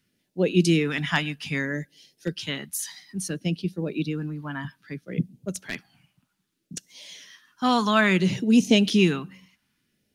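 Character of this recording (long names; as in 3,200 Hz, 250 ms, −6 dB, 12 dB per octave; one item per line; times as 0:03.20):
phaser sweep stages 2, 0.61 Hz, lowest notch 410–1,200 Hz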